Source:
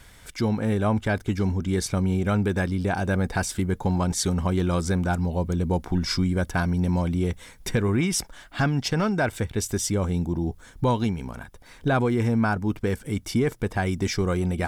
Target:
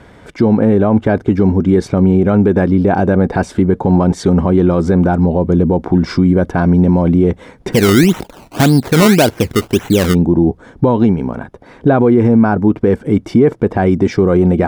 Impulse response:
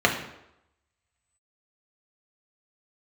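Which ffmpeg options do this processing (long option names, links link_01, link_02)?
-filter_complex "[0:a]bandpass=frequency=360:width_type=q:width=0.74:csg=0,asplit=3[link_01][link_02][link_03];[link_01]afade=type=out:start_time=7.72:duration=0.02[link_04];[link_02]acrusher=samples=18:mix=1:aa=0.000001:lfo=1:lforange=18:lforate=1.8,afade=type=in:start_time=7.72:duration=0.02,afade=type=out:start_time=10.13:duration=0.02[link_05];[link_03]afade=type=in:start_time=10.13:duration=0.02[link_06];[link_04][link_05][link_06]amix=inputs=3:normalize=0,alimiter=level_in=19.5dB:limit=-1dB:release=50:level=0:latency=1,volume=-1dB"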